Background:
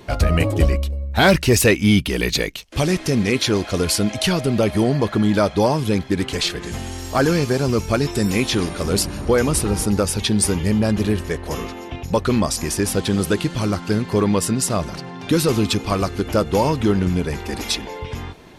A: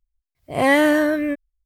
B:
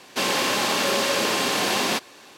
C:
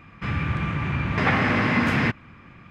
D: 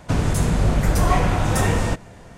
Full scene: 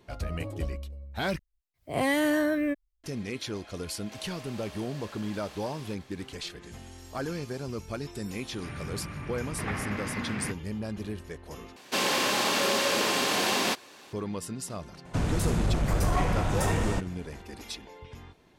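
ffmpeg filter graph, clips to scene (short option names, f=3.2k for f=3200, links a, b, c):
-filter_complex "[2:a]asplit=2[a][b];[0:a]volume=-16.5dB[c];[1:a]acrossover=split=240|3000[d][e][f];[e]acompressor=threshold=-19dB:ratio=6:attack=3.2:release=140:knee=2.83:detection=peak[g];[d][g][f]amix=inputs=3:normalize=0[h];[a]acompressor=threshold=-35dB:ratio=6:attack=3.2:release=140:knee=1:detection=peak[i];[3:a]highpass=58[j];[4:a]asoftclip=type=tanh:threshold=-10.5dB[k];[c]asplit=3[l][m][n];[l]atrim=end=1.394[o];[h]atrim=end=1.65,asetpts=PTS-STARTPTS,volume=-4.5dB[p];[m]atrim=start=3.036:end=11.764[q];[b]atrim=end=2.37,asetpts=PTS-STARTPTS,volume=-3.5dB[r];[n]atrim=start=14.126[s];[i]atrim=end=2.37,asetpts=PTS-STARTPTS,volume=-11.5dB,afade=t=in:d=0.004:c=hsin,afade=t=out:st=2.366:d=0.004:c=hsin,adelay=3960[t];[j]atrim=end=2.7,asetpts=PTS-STARTPTS,volume=-13.5dB,afade=t=in:d=0.004:c=hsin,afade=t=out:st=2.696:d=0.004:c=hsin,adelay=8410[u];[k]atrim=end=2.37,asetpts=PTS-STARTPTS,volume=-6.5dB,afade=t=in:d=0.004:c=hsin,afade=t=out:st=2.366:d=0.004:c=hsin,adelay=15050[v];[o][p]acrossfade=d=0.004:c1=hsin:c2=hsin[w];[w][q]acrossfade=d=0.004:c1=hsin:c2=hsin[x];[x][r]acrossfade=d=0.004:c1=hsin:c2=hsin[y];[y][s]acrossfade=d=0.004:c1=hsin:c2=hsin[z];[z][t][u][v]amix=inputs=4:normalize=0"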